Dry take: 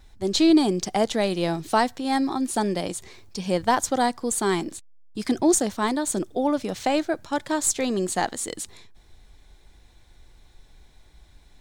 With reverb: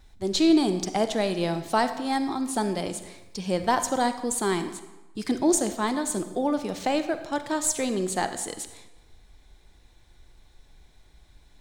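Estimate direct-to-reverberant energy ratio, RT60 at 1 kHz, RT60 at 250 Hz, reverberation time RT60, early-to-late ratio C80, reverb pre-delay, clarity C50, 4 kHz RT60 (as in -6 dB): 9.5 dB, 1.0 s, 1.0 s, 1.1 s, 12.0 dB, 39 ms, 10.0 dB, 0.80 s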